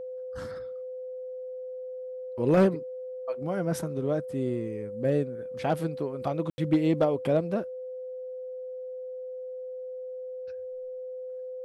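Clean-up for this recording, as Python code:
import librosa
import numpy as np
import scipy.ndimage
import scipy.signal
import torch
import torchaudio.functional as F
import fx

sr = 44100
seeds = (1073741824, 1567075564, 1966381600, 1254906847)

y = fx.fix_declip(x, sr, threshold_db=-15.0)
y = fx.notch(y, sr, hz=510.0, q=30.0)
y = fx.fix_ambience(y, sr, seeds[0], print_start_s=7.64, print_end_s=8.14, start_s=6.5, end_s=6.58)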